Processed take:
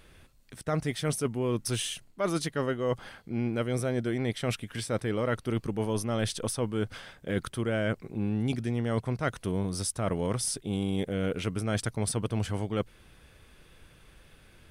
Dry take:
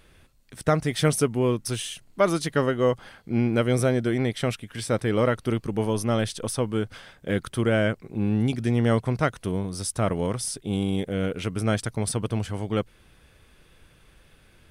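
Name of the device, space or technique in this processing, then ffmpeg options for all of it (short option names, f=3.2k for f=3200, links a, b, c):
compression on the reversed sound: -af "areverse,acompressor=threshold=-25dB:ratio=10,areverse"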